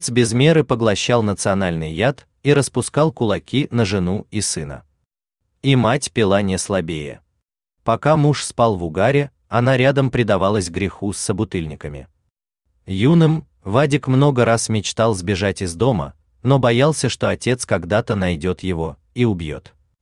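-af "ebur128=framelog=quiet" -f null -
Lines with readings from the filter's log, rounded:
Integrated loudness:
  I:         -18.3 LUFS
  Threshold: -28.7 LUFS
Loudness range:
  LRA:         3.3 LU
  Threshold: -38.9 LUFS
  LRA low:   -20.7 LUFS
  LRA high:  -17.4 LUFS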